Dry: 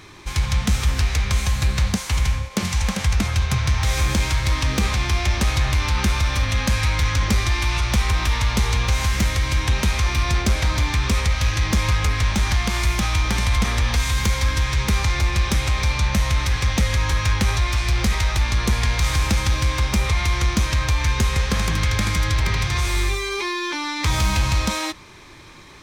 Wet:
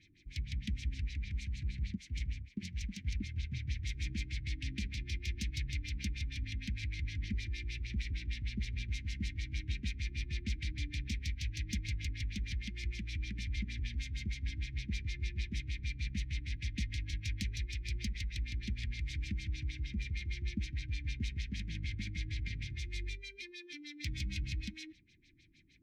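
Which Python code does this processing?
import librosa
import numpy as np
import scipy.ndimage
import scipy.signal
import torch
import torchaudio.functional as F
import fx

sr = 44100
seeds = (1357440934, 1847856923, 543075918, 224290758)

y = fx.filter_lfo_lowpass(x, sr, shape='sine', hz=6.5, low_hz=460.0, high_hz=5800.0, q=1.5)
y = fx.cheby_harmonics(y, sr, harmonics=(3,), levels_db=(-12,), full_scale_db=-3.5)
y = scipy.signal.sosfilt(scipy.signal.ellip(3, 1.0, 40, [300.0, 2100.0], 'bandstop', fs=sr, output='sos'), y)
y = y * librosa.db_to_amplitude(-7.5)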